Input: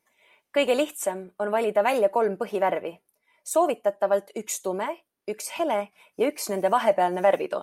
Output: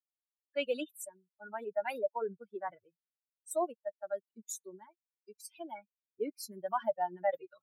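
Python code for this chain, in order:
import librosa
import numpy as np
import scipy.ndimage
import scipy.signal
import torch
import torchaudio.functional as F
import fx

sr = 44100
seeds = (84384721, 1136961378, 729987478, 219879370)

y = fx.bin_expand(x, sr, power=3.0)
y = scipy.signal.sosfilt(scipy.signal.butter(2, 200.0, 'highpass', fs=sr, output='sos'), y)
y = y * 10.0 ** (-7.0 / 20.0)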